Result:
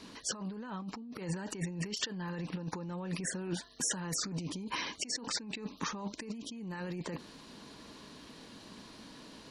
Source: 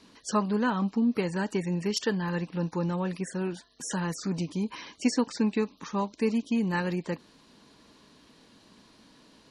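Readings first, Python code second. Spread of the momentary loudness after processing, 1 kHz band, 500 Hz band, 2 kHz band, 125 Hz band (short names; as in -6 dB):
16 LU, -9.5 dB, -13.0 dB, -6.0 dB, -7.5 dB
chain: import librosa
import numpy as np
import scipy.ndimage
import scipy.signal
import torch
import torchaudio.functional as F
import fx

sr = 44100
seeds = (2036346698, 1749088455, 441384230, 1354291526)

y = fx.over_compress(x, sr, threshold_db=-37.0, ratio=-1.0)
y = y * librosa.db_to_amplitude(-2.0)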